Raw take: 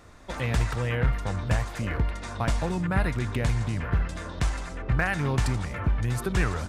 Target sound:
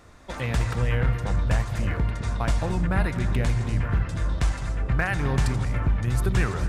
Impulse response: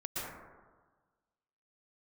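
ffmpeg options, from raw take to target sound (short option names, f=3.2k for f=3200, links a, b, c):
-filter_complex "[0:a]asplit=2[a][b];[1:a]atrim=start_sample=2205,lowshelf=f=260:g=11.5,adelay=89[c];[b][c]afir=irnorm=-1:irlink=0,volume=-16.5dB[d];[a][d]amix=inputs=2:normalize=0"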